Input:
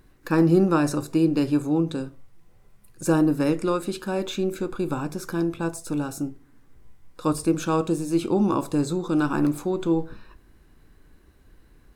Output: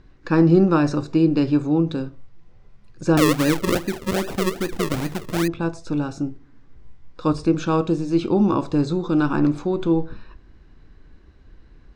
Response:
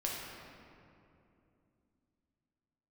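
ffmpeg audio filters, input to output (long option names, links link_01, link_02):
-filter_complex "[0:a]lowpass=frequency=5700:width=0.5412,lowpass=frequency=5700:width=1.3066,lowshelf=frequency=160:gain=5,asettb=1/sr,asplit=3[link_01][link_02][link_03];[link_01]atrim=end=3.174[link_04];[link_02]atrim=start=3.17:end=5.48,asetpts=PTS-STARTPTS,afade=type=in:duration=0.004:curve=qsin,afade=type=out:start_time=2.306:duration=0.004:curve=qsin,acrusher=samples=40:mix=1:aa=0.000001:lfo=1:lforange=40:lforate=2.5[link_05];[link_03]atrim=start=5.476[link_06];[link_04][link_05]acrossfade=duration=0.004:curve1=hsin:curve2=qsin[link_07];[link_07][link_06]acrossfade=duration=0.004:curve1=qsin:curve2=hsin,volume=2dB"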